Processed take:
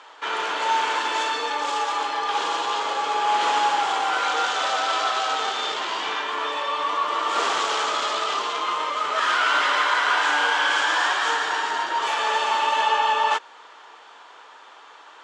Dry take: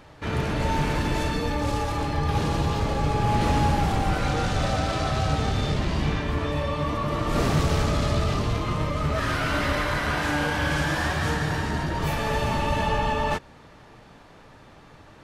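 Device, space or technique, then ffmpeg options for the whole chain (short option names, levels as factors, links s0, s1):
phone speaker on a table: -af "highpass=f=460:w=0.5412,highpass=f=460:w=1.3066,equalizer=f=580:t=q:w=4:g=-7,equalizer=f=980:t=q:w=4:g=7,equalizer=f=1400:t=q:w=4:g=6,equalizer=f=3200:t=q:w=4:g=8,equalizer=f=7200:t=q:w=4:g=5,lowpass=f=7900:w=0.5412,lowpass=f=7900:w=1.3066,volume=1.41"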